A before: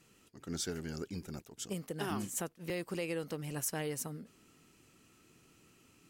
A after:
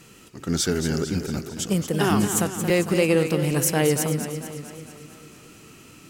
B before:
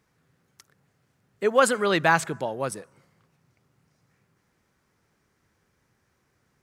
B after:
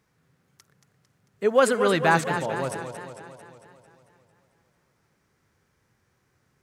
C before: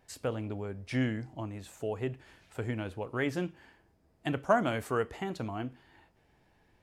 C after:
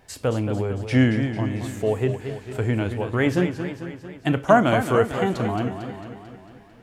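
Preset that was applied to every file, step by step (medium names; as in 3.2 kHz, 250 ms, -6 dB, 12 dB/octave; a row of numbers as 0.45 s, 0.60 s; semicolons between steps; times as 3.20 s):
harmonic-percussive split percussive -5 dB; modulated delay 224 ms, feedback 59%, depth 116 cents, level -9 dB; normalise loudness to -23 LUFS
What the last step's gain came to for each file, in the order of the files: +18.0 dB, +2.0 dB, +12.5 dB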